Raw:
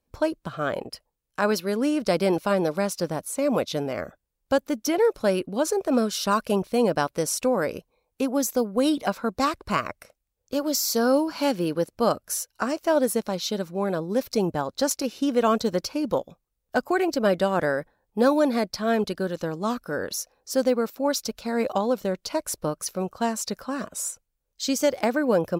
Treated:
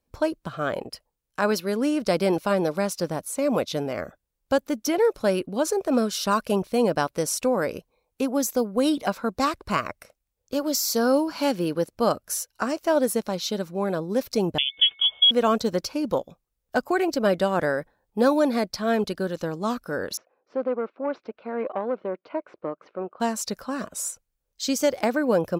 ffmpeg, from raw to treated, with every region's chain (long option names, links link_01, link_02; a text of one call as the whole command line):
ffmpeg -i in.wav -filter_complex "[0:a]asettb=1/sr,asplit=3[link_01][link_02][link_03];[link_01]atrim=end=14.584[link_04];[link_02]atrim=start=14.58:end=15.31,asetpts=PTS-STARTPTS,afade=type=in:duration=0.004:curve=qsin,afade=type=out:start_time=0.726:duration=0.004:curve=qsin,tiltshelf=frequency=780:gain=9,aeval=exprs='val(0)+0.00282*sin(2*PI*1400*n/s)':channel_layout=same,lowpass=frequency=3100:width_type=q:width=0.5098,lowpass=frequency=3100:width_type=q:width=0.6013,lowpass=frequency=3100:width_type=q:width=0.9,lowpass=frequency=3100:width_type=q:width=2.563,afreqshift=-3600[link_05];[link_03]atrim=start=15.306[link_06];[link_04][link_05]acrossfade=duration=0.004:curve1=hsin:curve2=qsin[link_07];[link_07][link_06]acrossfade=duration=0.004:curve1=qsin:curve2=hsin,asettb=1/sr,asplit=3[link_08][link_09][link_10];[link_08]atrim=end=20.174[link_11];[link_09]atrim=start=20.17:end=23.2,asetpts=PTS-STARTPTS,afade=type=in:duration=0.004:curve=qsin,afade=type=out:start_time=3.026:duration=0.004:curve=qsin,aeval=exprs='(tanh(7.08*val(0)+0.4)-tanh(0.4))/7.08':channel_layout=same,highpass=310,equalizer=frequency=350:width_type=q:width=4:gain=3,equalizer=frequency=850:width_type=q:width=4:gain=-3,equalizer=frequency=1800:width_type=q:width=4:gain=-6,lowpass=frequency=2200:width=0.5412,lowpass=frequency=2200:width=1.3066[link_12];[link_10]atrim=start=23.196[link_13];[link_11][link_12]acrossfade=duration=0.004:curve1=hsin:curve2=qsin[link_14];[link_14][link_13]acrossfade=duration=0.004:curve1=qsin:curve2=hsin" out.wav